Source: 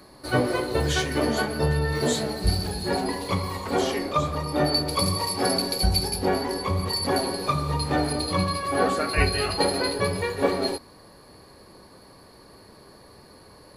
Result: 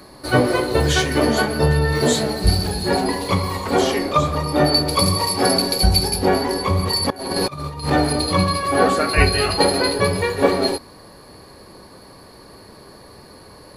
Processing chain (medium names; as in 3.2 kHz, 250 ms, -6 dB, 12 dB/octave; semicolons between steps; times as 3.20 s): 7.10–7.90 s: compressor with a negative ratio -31 dBFS, ratio -0.5; trim +6.5 dB